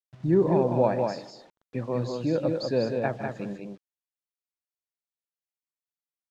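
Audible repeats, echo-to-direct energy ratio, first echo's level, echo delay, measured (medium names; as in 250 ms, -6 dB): 2, -4.0 dB, -13.5 dB, 154 ms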